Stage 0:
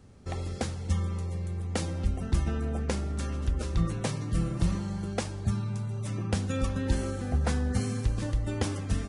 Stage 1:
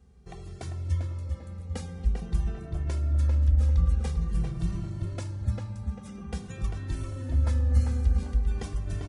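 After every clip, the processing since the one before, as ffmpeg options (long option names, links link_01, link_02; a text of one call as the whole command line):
ffmpeg -i in.wav -filter_complex "[0:a]equalizer=frequency=63:width=1.2:gain=13,asplit=2[link_01][link_02];[link_02]adelay=396,lowpass=frequency=2600:poles=1,volume=-3.5dB,asplit=2[link_03][link_04];[link_04]adelay=396,lowpass=frequency=2600:poles=1,volume=0.39,asplit=2[link_05][link_06];[link_06]adelay=396,lowpass=frequency=2600:poles=1,volume=0.39,asplit=2[link_07][link_08];[link_08]adelay=396,lowpass=frequency=2600:poles=1,volume=0.39,asplit=2[link_09][link_10];[link_10]adelay=396,lowpass=frequency=2600:poles=1,volume=0.39[link_11];[link_01][link_03][link_05][link_07][link_09][link_11]amix=inputs=6:normalize=0,asplit=2[link_12][link_13];[link_13]adelay=2.1,afreqshift=-0.48[link_14];[link_12][link_14]amix=inputs=2:normalize=1,volume=-5.5dB" out.wav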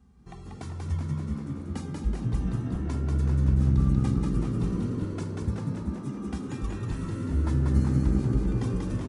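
ffmpeg -i in.wav -filter_complex "[0:a]equalizer=frequency=250:width_type=o:width=1:gain=10,equalizer=frequency=500:width_type=o:width=1:gain=-8,equalizer=frequency=1000:width_type=o:width=1:gain=8,asplit=2[link_01][link_02];[link_02]asplit=8[link_03][link_04][link_05][link_06][link_07][link_08][link_09][link_10];[link_03]adelay=188,afreqshift=65,volume=-3dB[link_11];[link_04]adelay=376,afreqshift=130,volume=-8dB[link_12];[link_05]adelay=564,afreqshift=195,volume=-13.1dB[link_13];[link_06]adelay=752,afreqshift=260,volume=-18.1dB[link_14];[link_07]adelay=940,afreqshift=325,volume=-23.1dB[link_15];[link_08]adelay=1128,afreqshift=390,volume=-28.2dB[link_16];[link_09]adelay=1316,afreqshift=455,volume=-33.2dB[link_17];[link_10]adelay=1504,afreqshift=520,volume=-38.3dB[link_18];[link_11][link_12][link_13][link_14][link_15][link_16][link_17][link_18]amix=inputs=8:normalize=0[link_19];[link_01][link_19]amix=inputs=2:normalize=0,volume=-3dB" out.wav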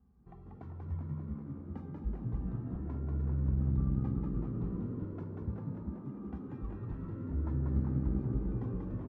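ffmpeg -i in.wav -af "lowpass=1200,volume=-8.5dB" out.wav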